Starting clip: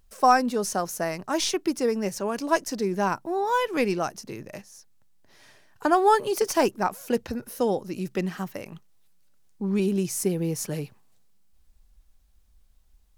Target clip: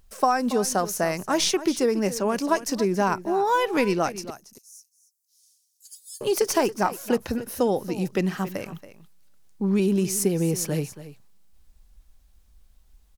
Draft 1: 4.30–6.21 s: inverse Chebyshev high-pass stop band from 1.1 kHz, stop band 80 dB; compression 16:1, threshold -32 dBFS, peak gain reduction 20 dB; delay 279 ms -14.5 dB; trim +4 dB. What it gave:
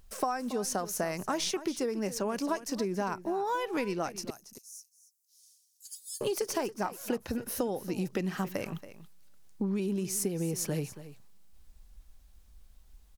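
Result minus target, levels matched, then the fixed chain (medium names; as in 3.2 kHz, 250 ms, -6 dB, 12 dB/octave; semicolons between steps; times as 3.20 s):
compression: peak gain reduction +11 dB
4.30–6.21 s: inverse Chebyshev high-pass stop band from 1.1 kHz, stop band 80 dB; compression 16:1, threshold -20.5 dBFS, peak gain reduction 9 dB; delay 279 ms -14.5 dB; trim +4 dB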